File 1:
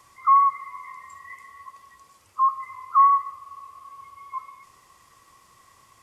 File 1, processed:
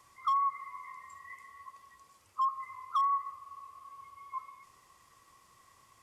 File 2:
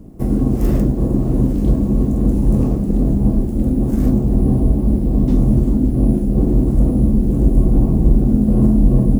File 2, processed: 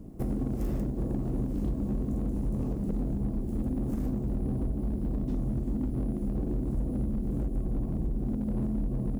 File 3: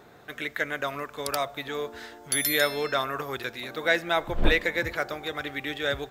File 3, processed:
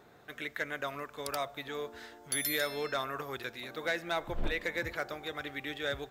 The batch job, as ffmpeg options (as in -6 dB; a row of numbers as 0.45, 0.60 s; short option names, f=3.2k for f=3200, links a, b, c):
-af "acompressor=threshold=-19dB:ratio=10,asoftclip=type=hard:threshold=-17.5dB,volume=-6.5dB"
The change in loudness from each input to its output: -14.0, -16.0, -8.0 LU